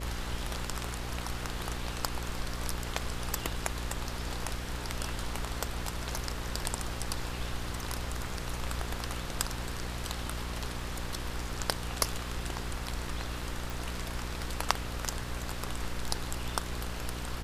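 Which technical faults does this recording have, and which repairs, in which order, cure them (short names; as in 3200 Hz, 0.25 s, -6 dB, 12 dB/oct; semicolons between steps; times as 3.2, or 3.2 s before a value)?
buzz 60 Hz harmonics 9 -39 dBFS
13.7 pop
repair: de-click; de-hum 60 Hz, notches 9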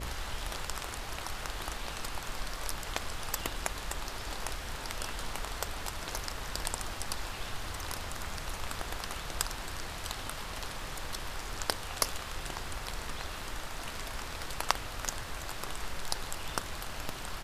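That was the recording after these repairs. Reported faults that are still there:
none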